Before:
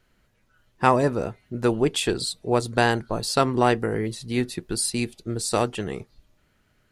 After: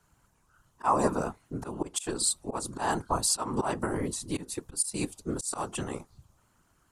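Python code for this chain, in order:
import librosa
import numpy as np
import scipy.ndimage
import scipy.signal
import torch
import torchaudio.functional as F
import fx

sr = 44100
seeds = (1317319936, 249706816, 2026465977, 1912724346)

y = fx.graphic_eq(x, sr, hz=(125, 500, 1000, 2000, 4000, 8000), db=(-9, -8, 10, -9, -6, 9))
y = fx.auto_swell(y, sr, attack_ms=222.0)
y = fx.whisperise(y, sr, seeds[0])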